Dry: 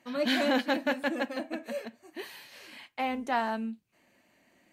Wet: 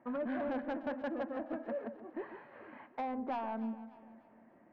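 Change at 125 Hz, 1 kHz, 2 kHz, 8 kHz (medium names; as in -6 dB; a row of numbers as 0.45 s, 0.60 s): no reading, -7.5 dB, -14.5 dB, under -30 dB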